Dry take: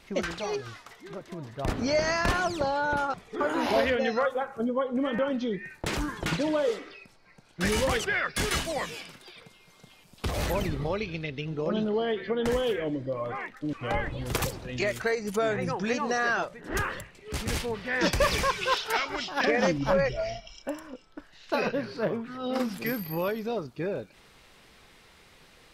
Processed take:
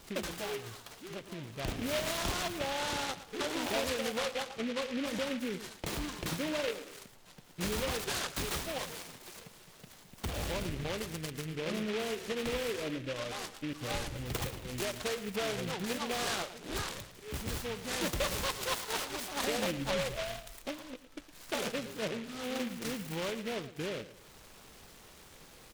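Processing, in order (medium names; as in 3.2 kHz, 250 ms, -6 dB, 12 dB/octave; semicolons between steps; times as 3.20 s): compression 1.5:1, threshold -49 dBFS, peak gain reduction 10.5 dB; feedback delay 112 ms, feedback 33%, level -14 dB; delay time shaken by noise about 2.2 kHz, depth 0.15 ms; trim +1 dB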